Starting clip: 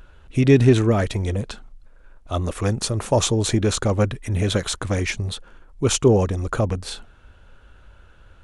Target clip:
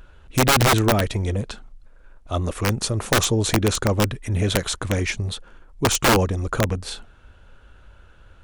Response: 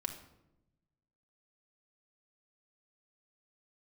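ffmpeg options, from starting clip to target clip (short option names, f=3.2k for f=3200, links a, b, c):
-af "aeval=exprs='(mod(3.35*val(0)+1,2)-1)/3.35':c=same"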